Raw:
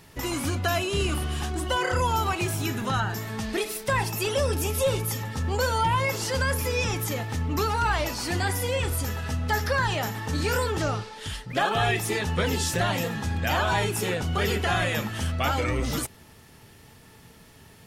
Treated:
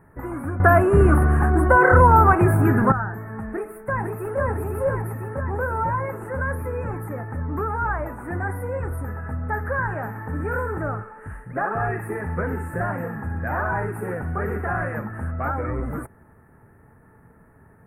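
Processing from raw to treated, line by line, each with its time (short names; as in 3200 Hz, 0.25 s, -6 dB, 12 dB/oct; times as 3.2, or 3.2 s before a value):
0.6–2.92 gain +12 dB
3.47–4.4 echo throw 0.5 s, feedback 65%, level -3 dB
9.59–14.99 thin delay 63 ms, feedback 60%, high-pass 1600 Hz, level -6.5 dB
whole clip: elliptic band-stop 1600–9100 Hz, stop band 60 dB; resonant high shelf 4600 Hz -13.5 dB, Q 1.5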